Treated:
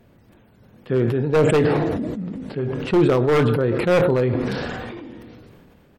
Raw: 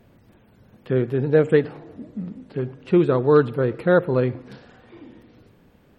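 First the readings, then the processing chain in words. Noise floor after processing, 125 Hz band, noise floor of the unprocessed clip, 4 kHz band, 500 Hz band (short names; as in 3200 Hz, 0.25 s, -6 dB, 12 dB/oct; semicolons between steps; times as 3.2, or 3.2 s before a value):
-54 dBFS, +3.0 dB, -55 dBFS, n/a, +0.5 dB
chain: outdoor echo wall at 22 m, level -23 dB; wavefolder -11 dBFS; doubler 26 ms -13 dB; sustainer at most 22 dB/s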